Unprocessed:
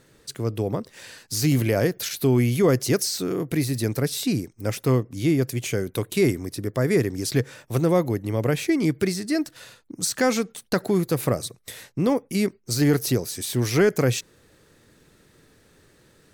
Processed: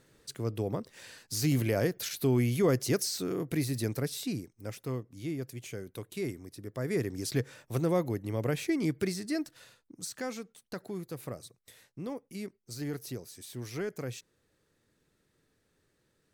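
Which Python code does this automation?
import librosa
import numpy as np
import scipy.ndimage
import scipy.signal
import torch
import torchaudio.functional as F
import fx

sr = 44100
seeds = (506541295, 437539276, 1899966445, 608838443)

y = fx.gain(x, sr, db=fx.line((3.81, -7.0), (4.89, -15.0), (6.58, -15.0), (7.14, -8.0), (9.28, -8.0), (10.39, -17.0)))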